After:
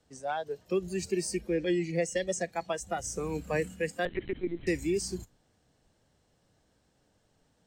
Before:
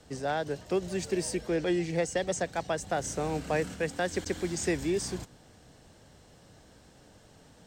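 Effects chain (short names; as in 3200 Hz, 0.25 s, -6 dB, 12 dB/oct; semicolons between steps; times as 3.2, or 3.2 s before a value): spectral noise reduction 14 dB; 4.05–4.67 LPC vocoder at 8 kHz pitch kept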